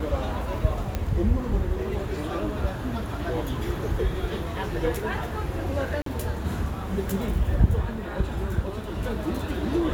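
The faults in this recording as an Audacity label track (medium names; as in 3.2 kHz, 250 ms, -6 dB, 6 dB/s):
0.950000	0.950000	pop -14 dBFS
6.020000	6.060000	dropout 43 ms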